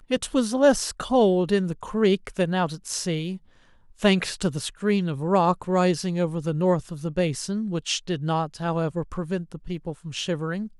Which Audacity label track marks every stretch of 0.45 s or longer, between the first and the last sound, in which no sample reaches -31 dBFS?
3.360000	4.020000	silence